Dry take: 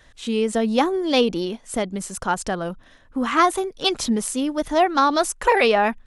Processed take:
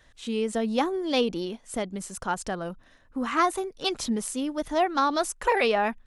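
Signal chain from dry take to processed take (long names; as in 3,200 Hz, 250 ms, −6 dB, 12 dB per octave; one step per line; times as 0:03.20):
0:02.53–0:03.91: notch filter 3,300 Hz, Q 13
level −6 dB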